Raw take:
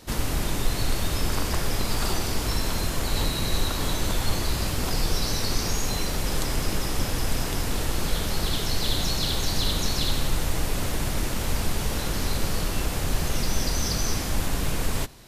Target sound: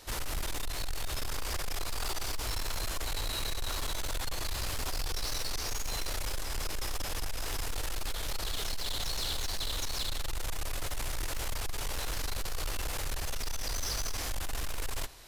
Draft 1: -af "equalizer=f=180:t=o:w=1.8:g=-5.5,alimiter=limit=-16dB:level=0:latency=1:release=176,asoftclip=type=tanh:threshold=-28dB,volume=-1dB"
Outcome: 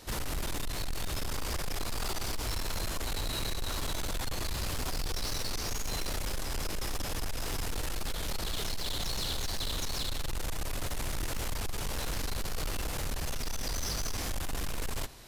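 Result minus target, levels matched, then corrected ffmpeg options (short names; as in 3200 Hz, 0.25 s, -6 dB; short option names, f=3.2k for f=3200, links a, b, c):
250 Hz band +5.5 dB
-af "equalizer=f=180:t=o:w=1.8:g=-15,alimiter=limit=-16dB:level=0:latency=1:release=176,asoftclip=type=tanh:threshold=-28dB,volume=-1dB"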